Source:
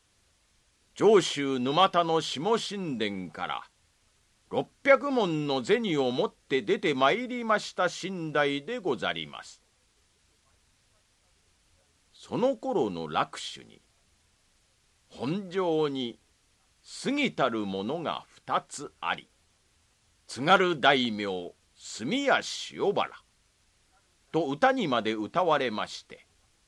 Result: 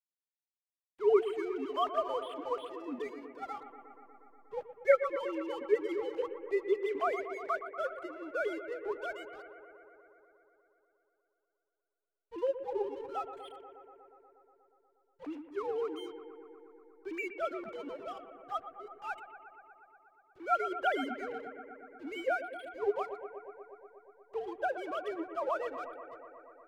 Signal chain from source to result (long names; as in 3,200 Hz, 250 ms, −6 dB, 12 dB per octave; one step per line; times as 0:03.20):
three sine waves on the formant tracks
treble cut that deepens with the level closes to 3,000 Hz, closed at −20 dBFS
slack as between gear wheels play −39.5 dBFS
bucket-brigade delay 120 ms, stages 2,048, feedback 79%, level −11.5 dB
level −8 dB